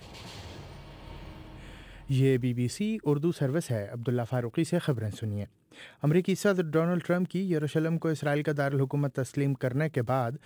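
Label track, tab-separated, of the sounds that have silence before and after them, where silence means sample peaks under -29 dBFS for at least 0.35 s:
2.100000	5.440000	sound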